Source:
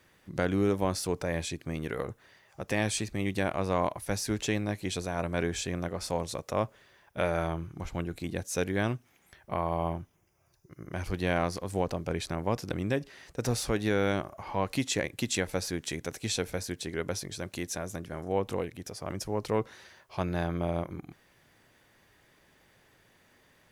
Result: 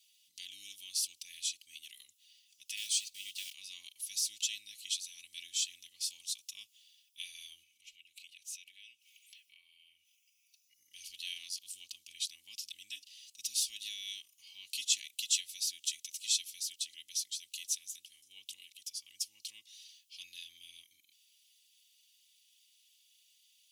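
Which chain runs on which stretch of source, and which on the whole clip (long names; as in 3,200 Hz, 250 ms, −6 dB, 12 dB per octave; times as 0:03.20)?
0:02.77–0:03.54: one scale factor per block 5 bits + high-shelf EQ 8,700 Hz −4 dB + notch filter 1,200 Hz, Q 22
0:07.63–0:10.74: parametric band 2,400 Hz +14.5 dB 0.7 octaves + downward compressor 3 to 1, threshold −46 dBFS
whole clip: elliptic high-pass filter 2,900 Hz, stop band 50 dB; comb filter 3.5 ms, depth 75%; level +1.5 dB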